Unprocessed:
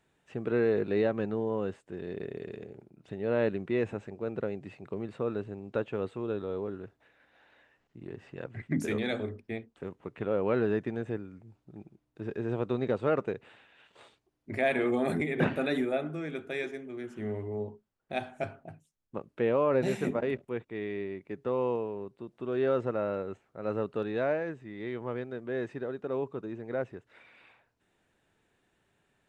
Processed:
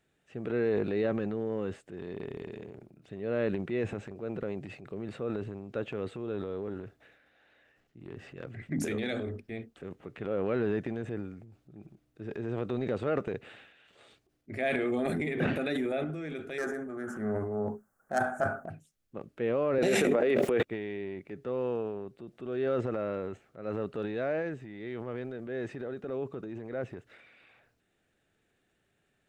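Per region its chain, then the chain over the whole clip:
0:16.58–0:18.70: phase distortion by the signal itself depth 0.15 ms + drawn EQ curve 140 Hz 0 dB, 210 Hz +7 dB, 330 Hz +1 dB, 820 Hz +12 dB, 1,500 Hz +14 dB, 2,500 Hz −12 dB, 3,900 Hz −12 dB, 6,500 Hz +6 dB, 10,000 Hz +9 dB
0:19.78–0:20.63: high-pass filter 270 Hz + parametric band 500 Hz +4 dB 0.42 octaves + envelope flattener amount 100%
whole clip: parametric band 960 Hz −10.5 dB 0.29 octaves; transient designer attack −2 dB, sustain +8 dB; level −2 dB

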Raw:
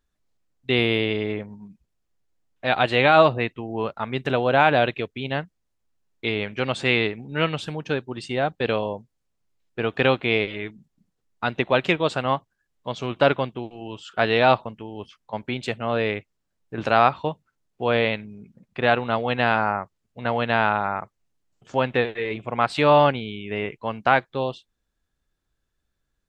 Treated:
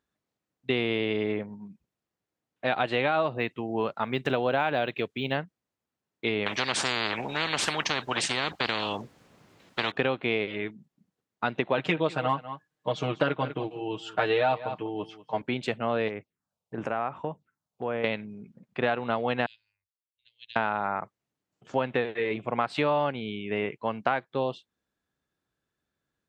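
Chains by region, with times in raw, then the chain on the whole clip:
0:03.32–0:05.37: high-shelf EQ 4,900 Hz +11.5 dB + linearly interpolated sample-rate reduction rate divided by 2×
0:06.46–0:09.92: high-shelf EQ 5,400 Hz −9 dB + every bin compressed towards the loudest bin 10 to 1
0:11.77–0:15.42: comb filter 6.5 ms, depth 95% + single-tap delay 195 ms −17.5 dB
0:16.08–0:18.04: downward compressor 2.5 to 1, threshold −28 dBFS + phaser swept by the level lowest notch 240 Hz, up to 4,300 Hz, full sweep at −30 dBFS
0:19.46–0:20.56: inverse Chebyshev band-stop filter 130–1,400 Hz, stop band 50 dB + parametric band 2,200 Hz −3.5 dB 1.4 octaves + expander for the loud parts 2.5 to 1, over −50 dBFS
whole clip: high-pass filter 130 Hz 12 dB per octave; high-shelf EQ 3,800 Hz −7 dB; downward compressor 6 to 1, threshold −22 dBFS

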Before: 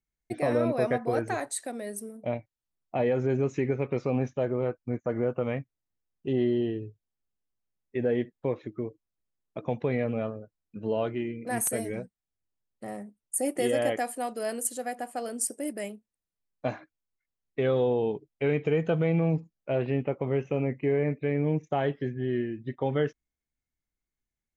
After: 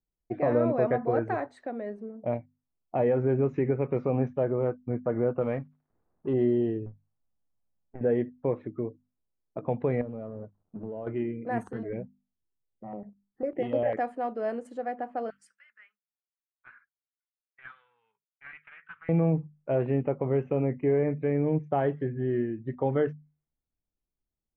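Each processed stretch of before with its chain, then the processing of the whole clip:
0:05.41–0:06.34: mu-law and A-law mismatch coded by mu + low-shelf EQ 190 Hz −5 dB
0:06.86–0:08.01: gain on one half-wave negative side −12 dB + parametric band 380 Hz −10.5 dB 0.42 octaves + compressor whose output falls as the input rises −40 dBFS
0:10.01–0:11.07: mu-law and A-law mismatch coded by mu + parametric band 2,100 Hz −9.5 dB 1.4 octaves + downward compressor 10 to 1, threshold −34 dBFS
0:11.63–0:13.97: high-frequency loss of the air 67 metres + step-sequenced phaser 10 Hz 610–6,100 Hz
0:15.30–0:19.09: elliptic high-pass filter 1,400 Hz, stop band 50 dB + highs frequency-modulated by the lows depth 0.18 ms
whole clip: low-pass that shuts in the quiet parts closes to 880 Hz, open at −27 dBFS; low-pass filter 1,500 Hz 12 dB per octave; mains-hum notches 50/100/150/200/250 Hz; level +1.5 dB

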